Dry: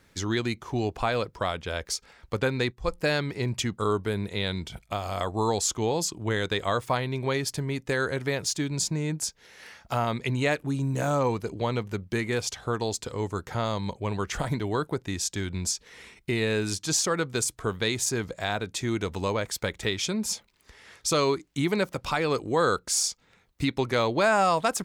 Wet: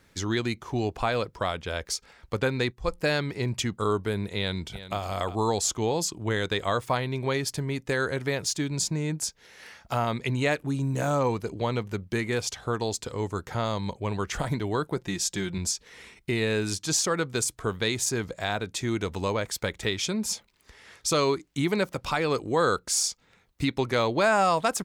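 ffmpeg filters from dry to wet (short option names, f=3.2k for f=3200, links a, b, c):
-filter_complex "[0:a]asplit=2[a][b];[b]afade=t=in:st=4.37:d=0.01,afade=t=out:st=4.99:d=0.01,aecho=0:1:360|720:0.211349|0.0422698[c];[a][c]amix=inputs=2:normalize=0,asettb=1/sr,asplit=3[d][e][f];[d]atrim=end=14.964[g];[e]atrim=start=14.96:end=15.58,asetpts=PTS-STARTPTS,afade=t=in:d=0.004:c=qsin,afade=t=out:st=0.616:d=0.004:c=qsin,aecho=1:1:5.7:0.67,atrim=end_sample=27342[h];[f]atrim=start=15.576[i];[g][h]acrossfade=d=0.004:c1=hsin:c2=qsin[j];[j][i]acrossfade=d=0.004:c1=qsin:c2=hsin"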